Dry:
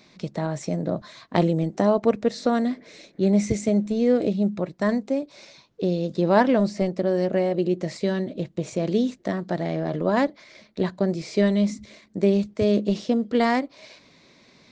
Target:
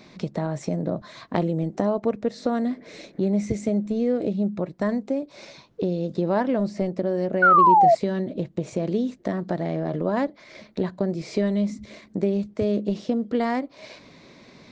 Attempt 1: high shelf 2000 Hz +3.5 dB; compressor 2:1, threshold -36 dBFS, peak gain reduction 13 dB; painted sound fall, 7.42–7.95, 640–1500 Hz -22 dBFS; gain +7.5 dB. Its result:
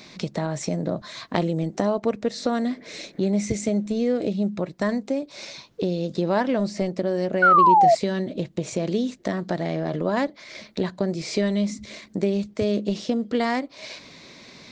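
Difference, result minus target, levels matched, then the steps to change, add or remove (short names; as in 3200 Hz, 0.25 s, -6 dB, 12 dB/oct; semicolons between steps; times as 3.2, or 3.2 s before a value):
4000 Hz band +8.0 dB
change: high shelf 2000 Hz -7 dB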